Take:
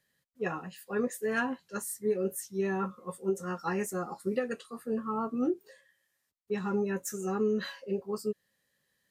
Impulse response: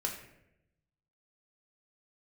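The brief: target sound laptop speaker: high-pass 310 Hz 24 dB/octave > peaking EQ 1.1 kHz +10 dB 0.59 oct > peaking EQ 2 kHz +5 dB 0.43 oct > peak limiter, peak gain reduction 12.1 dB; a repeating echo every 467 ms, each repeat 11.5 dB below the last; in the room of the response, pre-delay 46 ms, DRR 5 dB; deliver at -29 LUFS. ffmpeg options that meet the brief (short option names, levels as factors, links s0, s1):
-filter_complex "[0:a]aecho=1:1:467|934|1401:0.266|0.0718|0.0194,asplit=2[s0][s1];[1:a]atrim=start_sample=2205,adelay=46[s2];[s1][s2]afir=irnorm=-1:irlink=0,volume=0.398[s3];[s0][s3]amix=inputs=2:normalize=0,highpass=f=310:w=0.5412,highpass=f=310:w=1.3066,equalizer=f=1100:t=o:w=0.59:g=10,equalizer=f=2000:t=o:w=0.43:g=5,volume=2.37,alimiter=limit=0.1:level=0:latency=1"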